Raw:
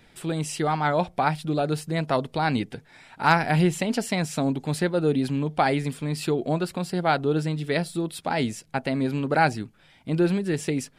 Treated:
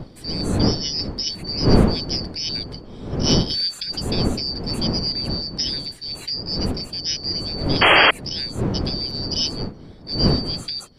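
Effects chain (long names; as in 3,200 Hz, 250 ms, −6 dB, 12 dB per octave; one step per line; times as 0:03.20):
band-splitting scrambler in four parts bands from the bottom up 4321
wind on the microphone 280 Hz −21 dBFS
sound drawn into the spectrogram noise, 0:07.81–0:08.11, 290–3,300 Hz −9 dBFS
level −3.5 dB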